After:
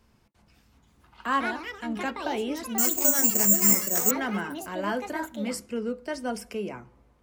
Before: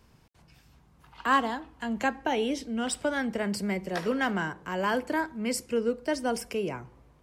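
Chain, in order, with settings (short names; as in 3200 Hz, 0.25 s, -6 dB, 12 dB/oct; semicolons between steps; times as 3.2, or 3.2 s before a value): on a send at -7.5 dB: steep low-pass 2900 Hz 96 dB/oct + reverb, pre-delay 3 ms; on the sum: echoes that change speed 0.466 s, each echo +5 st, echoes 2, each echo -6 dB; 2.78–4.11 careless resampling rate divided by 6×, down filtered, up zero stuff; gain -3.5 dB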